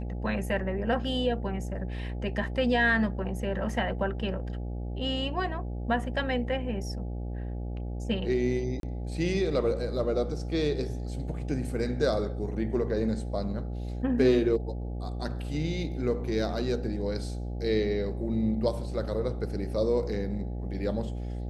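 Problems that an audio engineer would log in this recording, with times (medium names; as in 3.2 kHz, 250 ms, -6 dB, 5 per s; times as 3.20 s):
buzz 60 Hz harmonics 14 -34 dBFS
8.80–8.83 s: dropout 32 ms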